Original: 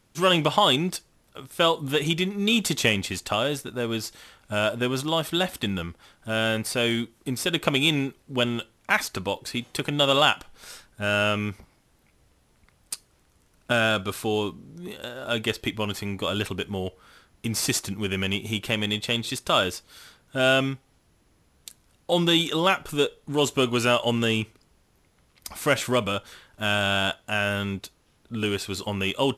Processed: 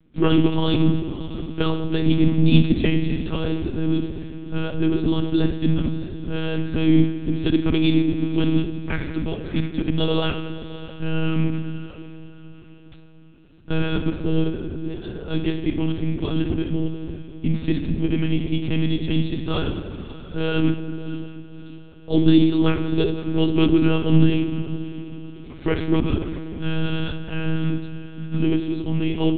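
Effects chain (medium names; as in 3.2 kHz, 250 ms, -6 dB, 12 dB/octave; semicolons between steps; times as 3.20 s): resonant low shelf 470 Hz +12 dB, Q 1.5; on a send: echo that smears into a reverb 616 ms, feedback 42%, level -15 dB; on the sum: simulated room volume 1400 m³, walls mixed, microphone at 1.1 m; monotone LPC vocoder at 8 kHz 160 Hz; trim -6.5 dB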